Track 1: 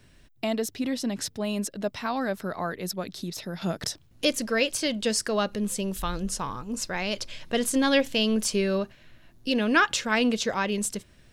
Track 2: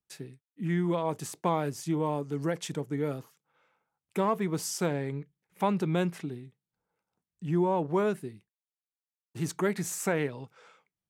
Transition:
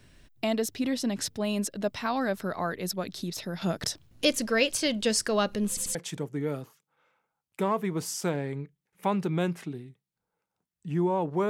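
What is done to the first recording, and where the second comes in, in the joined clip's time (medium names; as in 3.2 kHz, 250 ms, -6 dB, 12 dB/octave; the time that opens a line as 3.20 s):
track 1
5.68 s: stutter in place 0.09 s, 3 plays
5.95 s: go over to track 2 from 2.52 s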